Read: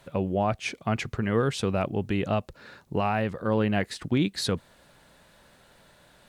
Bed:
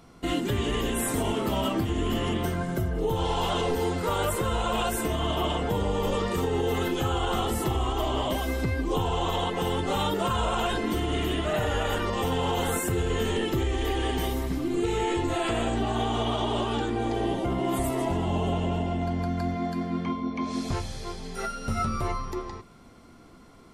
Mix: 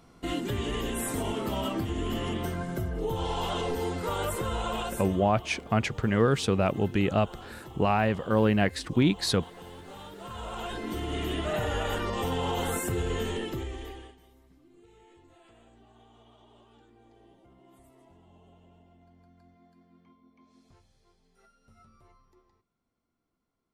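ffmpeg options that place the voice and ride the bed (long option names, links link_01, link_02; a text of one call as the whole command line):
ffmpeg -i stem1.wav -i stem2.wav -filter_complex "[0:a]adelay=4850,volume=1.5dB[link_01];[1:a]volume=11.5dB,afade=type=out:start_time=4.67:duration=0.64:silence=0.188365,afade=type=in:start_time=10.15:duration=1.28:silence=0.16788,afade=type=out:start_time=13.08:duration=1.08:silence=0.0398107[link_02];[link_01][link_02]amix=inputs=2:normalize=0" out.wav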